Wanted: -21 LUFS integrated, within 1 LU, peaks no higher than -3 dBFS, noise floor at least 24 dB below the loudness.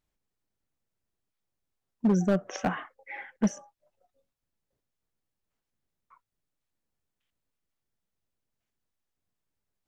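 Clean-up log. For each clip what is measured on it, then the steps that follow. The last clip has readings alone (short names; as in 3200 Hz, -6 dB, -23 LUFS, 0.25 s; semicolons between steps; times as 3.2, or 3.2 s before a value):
clipped 0.4%; flat tops at -18.0 dBFS; loudness -29.0 LUFS; peak -18.0 dBFS; loudness target -21.0 LUFS
-> clip repair -18 dBFS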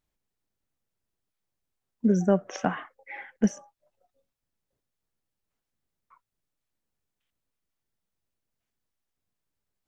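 clipped 0.0%; loudness -26.5 LUFS; peak -9.0 dBFS; loudness target -21.0 LUFS
-> gain +5.5 dB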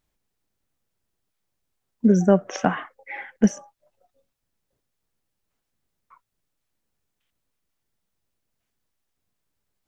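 loudness -21.5 LUFS; peak -3.5 dBFS; noise floor -80 dBFS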